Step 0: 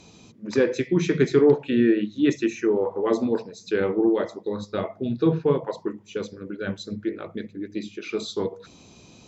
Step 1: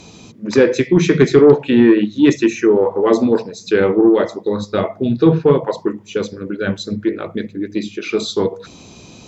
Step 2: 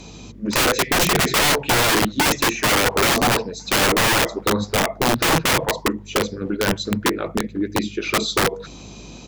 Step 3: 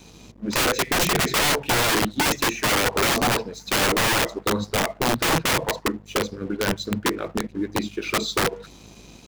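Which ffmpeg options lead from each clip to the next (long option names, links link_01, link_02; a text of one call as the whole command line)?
ffmpeg -i in.wav -af "acontrast=89,volume=2.5dB" out.wav
ffmpeg -i in.wav -filter_complex "[0:a]aeval=exprs='val(0)+0.00708*(sin(2*PI*50*n/s)+sin(2*PI*2*50*n/s)/2+sin(2*PI*3*50*n/s)/3+sin(2*PI*4*50*n/s)/4+sin(2*PI*5*50*n/s)/5)':channel_layout=same,aeval=exprs='(mod(3.98*val(0)+1,2)-1)/3.98':channel_layout=same,asplit=2[link_01][link_02];[link_02]adelay=1399,volume=-30dB,highshelf=frequency=4000:gain=-31.5[link_03];[link_01][link_03]amix=inputs=2:normalize=0" out.wav
ffmpeg -i in.wav -af "aeval=exprs='sgn(val(0))*max(abs(val(0))-0.00631,0)':channel_layout=same,volume=-3dB" out.wav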